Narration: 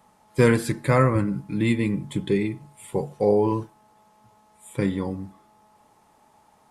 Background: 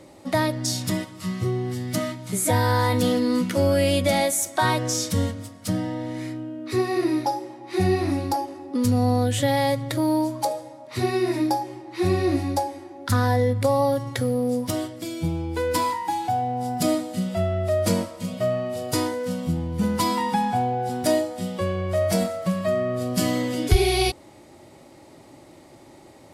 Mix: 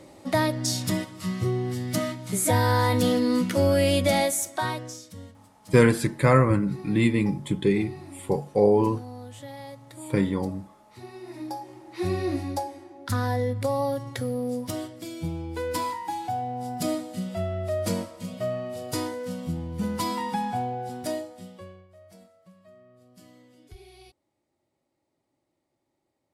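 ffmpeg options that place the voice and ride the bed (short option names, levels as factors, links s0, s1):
-filter_complex "[0:a]adelay=5350,volume=1.06[s0];[1:a]volume=4.47,afade=t=out:st=4.17:d=0.85:silence=0.11885,afade=t=in:st=11.23:d=0.77:silence=0.199526,afade=t=out:st=20.59:d=1.29:silence=0.0595662[s1];[s0][s1]amix=inputs=2:normalize=0"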